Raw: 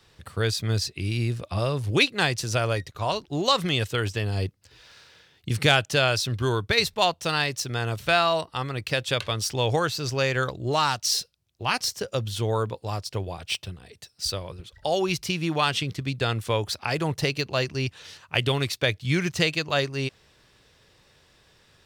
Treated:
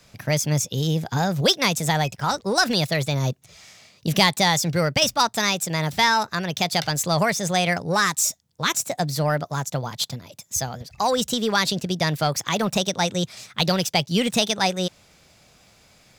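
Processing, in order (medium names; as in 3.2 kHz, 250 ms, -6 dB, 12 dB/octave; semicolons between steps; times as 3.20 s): in parallel at -4 dB: saturation -20.5 dBFS, distortion -11 dB; on the sum: speed mistake 33 rpm record played at 45 rpm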